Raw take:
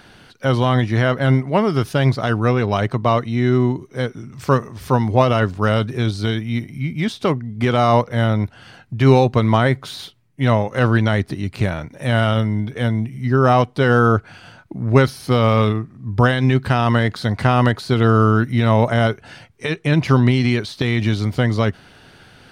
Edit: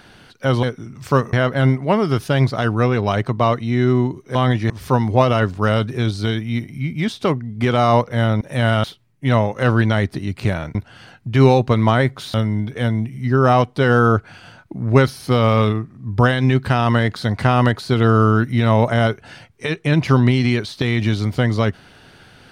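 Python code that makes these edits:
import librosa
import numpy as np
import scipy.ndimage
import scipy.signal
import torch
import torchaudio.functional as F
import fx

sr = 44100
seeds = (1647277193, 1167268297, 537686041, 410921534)

y = fx.edit(x, sr, fx.swap(start_s=0.63, length_s=0.35, other_s=4.0, other_length_s=0.7),
    fx.swap(start_s=8.41, length_s=1.59, other_s=11.91, other_length_s=0.43), tone=tone)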